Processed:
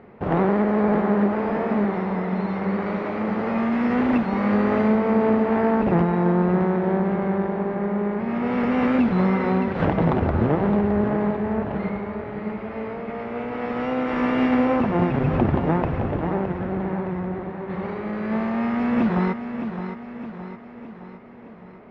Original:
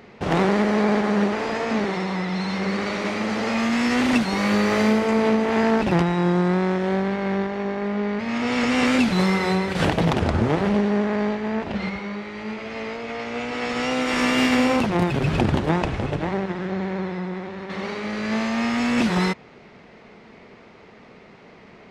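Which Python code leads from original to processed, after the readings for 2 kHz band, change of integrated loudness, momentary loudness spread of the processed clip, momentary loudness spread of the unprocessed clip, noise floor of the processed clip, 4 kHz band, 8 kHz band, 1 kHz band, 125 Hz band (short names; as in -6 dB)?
-6.0 dB, 0.0 dB, 11 LU, 10 LU, -41 dBFS, under -10 dB, under -25 dB, 0.0 dB, +0.5 dB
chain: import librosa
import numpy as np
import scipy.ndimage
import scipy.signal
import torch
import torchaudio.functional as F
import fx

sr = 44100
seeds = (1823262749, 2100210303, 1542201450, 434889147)

y = scipy.signal.sosfilt(scipy.signal.butter(2, 1400.0, 'lowpass', fs=sr, output='sos'), x)
y = fx.echo_feedback(y, sr, ms=615, feedback_pct=53, wet_db=-9.0)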